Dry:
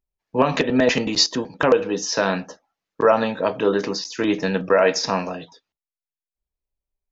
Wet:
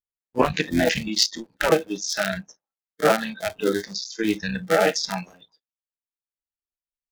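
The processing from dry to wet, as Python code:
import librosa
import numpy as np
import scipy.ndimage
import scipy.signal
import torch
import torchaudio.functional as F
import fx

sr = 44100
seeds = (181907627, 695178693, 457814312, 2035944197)

y = fx.cycle_switch(x, sr, every=3, mode='muted')
y = fx.noise_reduce_blind(y, sr, reduce_db=21)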